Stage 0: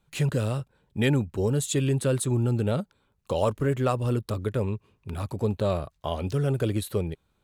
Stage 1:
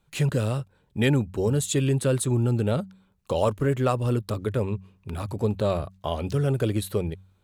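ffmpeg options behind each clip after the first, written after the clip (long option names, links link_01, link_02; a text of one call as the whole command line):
ffmpeg -i in.wav -af "bandreject=frequency=94.83:width_type=h:width=4,bandreject=frequency=189.66:width_type=h:width=4,volume=1.5dB" out.wav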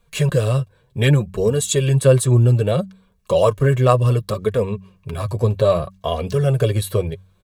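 ffmpeg -i in.wav -af "aecho=1:1:1.8:0.57,flanger=delay=4.2:depth=4:regen=25:speed=0.65:shape=sinusoidal,volume=9dB" out.wav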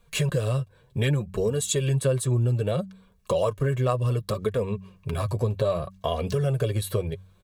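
ffmpeg -i in.wav -af "acompressor=threshold=-25dB:ratio=2.5" out.wav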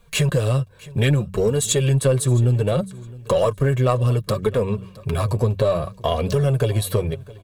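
ffmpeg -i in.wav -filter_complex "[0:a]asplit=2[link_01][link_02];[link_02]aeval=exprs='clip(val(0),-1,0.0531)':channel_layout=same,volume=-5.5dB[link_03];[link_01][link_03]amix=inputs=2:normalize=0,aecho=1:1:664|1328:0.0944|0.0151,volume=2.5dB" out.wav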